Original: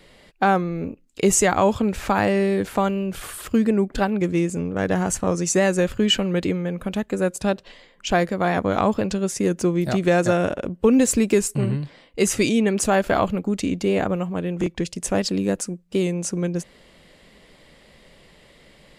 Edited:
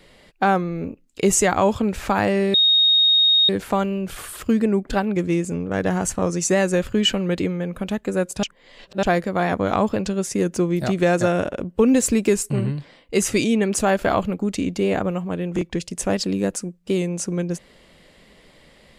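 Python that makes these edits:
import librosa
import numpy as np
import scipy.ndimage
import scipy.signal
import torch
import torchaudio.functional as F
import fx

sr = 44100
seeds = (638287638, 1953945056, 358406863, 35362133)

y = fx.edit(x, sr, fx.insert_tone(at_s=2.54, length_s=0.95, hz=3730.0, db=-12.5),
    fx.reverse_span(start_s=7.48, length_s=0.6), tone=tone)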